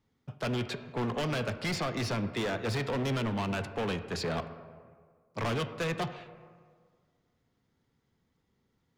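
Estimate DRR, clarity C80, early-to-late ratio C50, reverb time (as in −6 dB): 9.0 dB, 12.0 dB, 11.0 dB, 1.8 s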